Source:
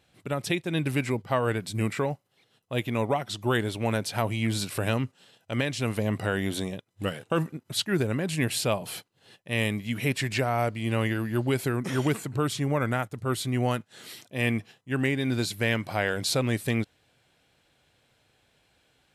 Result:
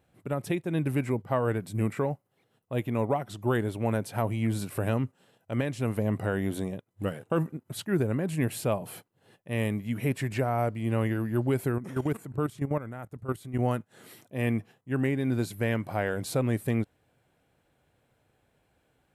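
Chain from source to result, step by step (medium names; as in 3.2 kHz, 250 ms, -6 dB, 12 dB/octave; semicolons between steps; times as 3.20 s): peaking EQ 4.3 kHz -13.5 dB 2.2 oct; 11.78–13.59 s: level held to a coarse grid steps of 13 dB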